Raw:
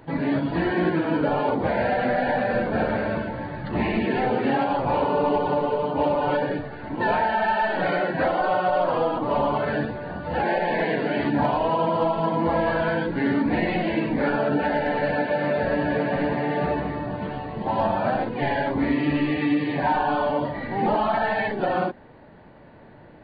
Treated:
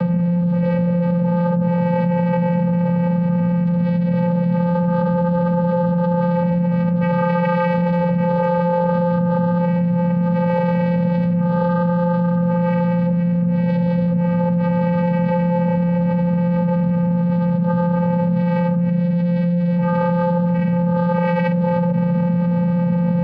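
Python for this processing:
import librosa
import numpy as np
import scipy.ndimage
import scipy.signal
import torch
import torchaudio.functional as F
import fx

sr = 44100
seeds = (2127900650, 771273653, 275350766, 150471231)

y = scipy.signal.sosfilt(scipy.signal.cheby1(2, 1.0, [140.0, 4100.0], 'bandpass', fs=sr, output='sos'), x)
y = fx.low_shelf(y, sr, hz=390.0, db=8.5)
y = fx.vocoder(y, sr, bands=8, carrier='square', carrier_hz=174.0)
y = fx.env_flatten(y, sr, amount_pct=100)
y = y * 10.0 ** (-4.5 / 20.0)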